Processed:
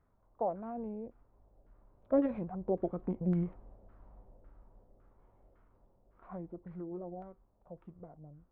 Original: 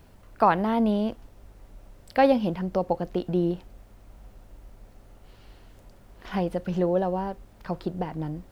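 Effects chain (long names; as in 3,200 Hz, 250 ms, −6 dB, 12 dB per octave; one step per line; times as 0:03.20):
source passing by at 0:03.57, 9 m/s, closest 7 metres
auto-filter low-pass saw down 1.8 Hz 810–1,900 Hz
formants moved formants −5 semitones
level −6.5 dB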